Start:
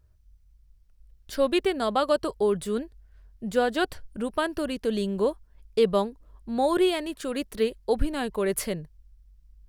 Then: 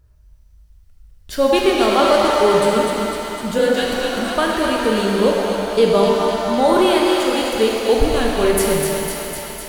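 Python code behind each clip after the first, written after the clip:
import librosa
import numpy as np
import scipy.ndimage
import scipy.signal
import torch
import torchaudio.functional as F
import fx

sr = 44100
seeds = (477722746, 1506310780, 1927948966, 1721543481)

y = fx.echo_thinned(x, sr, ms=252, feedback_pct=74, hz=630.0, wet_db=-5)
y = fx.spec_repair(y, sr, seeds[0], start_s=3.6, length_s=0.66, low_hz=240.0, high_hz=1600.0, source='both')
y = fx.rev_shimmer(y, sr, seeds[1], rt60_s=2.5, semitones=7, shimmer_db=-8, drr_db=-1.0)
y = y * 10.0 ** (6.5 / 20.0)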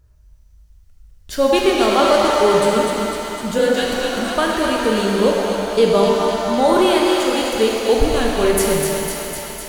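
y = fx.peak_eq(x, sr, hz=6600.0, db=3.5, octaves=0.47)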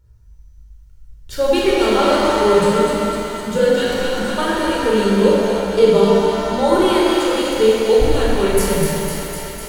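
y = fx.room_shoebox(x, sr, seeds[2], volume_m3=2000.0, walls='furnished', distance_m=4.5)
y = y * 10.0 ** (-5.0 / 20.0)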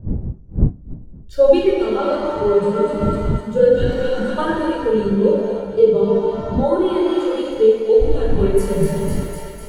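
y = fx.dmg_wind(x, sr, seeds[3], corner_hz=180.0, level_db=-27.0)
y = fx.rider(y, sr, range_db=5, speed_s=0.5)
y = fx.spectral_expand(y, sr, expansion=1.5)
y = y * 10.0 ** (1.0 / 20.0)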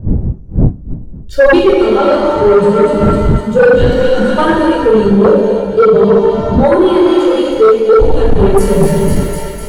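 y = fx.fold_sine(x, sr, drive_db=8, ceiling_db=-1.0)
y = y * 10.0 ** (-1.5 / 20.0)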